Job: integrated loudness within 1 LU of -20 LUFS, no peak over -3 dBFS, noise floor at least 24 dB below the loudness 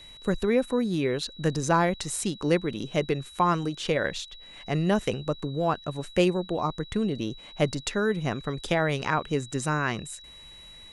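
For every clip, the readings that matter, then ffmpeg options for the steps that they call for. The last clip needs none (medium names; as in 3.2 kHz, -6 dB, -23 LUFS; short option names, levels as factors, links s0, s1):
steady tone 3.9 kHz; tone level -46 dBFS; loudness -27.5 LUFS; peak level -9.0 dBFS; loudness target -20.0 LUFS
-> -af "bandreject=f=3900:w=30"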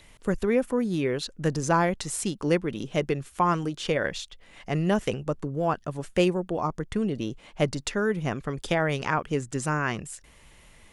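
steady tone not found; loudness -27.5 LUFS; peak level -9.0 dBFS; loudness target -20.0 LUFS
-> -af "volume=2.37,alimiter=limit=0.708:level=0:latency=1"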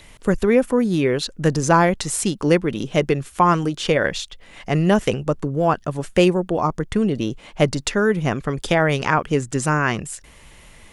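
loudness -20.0 LUFS; peak level -3.0 dBFS; noise floor -47 dBFS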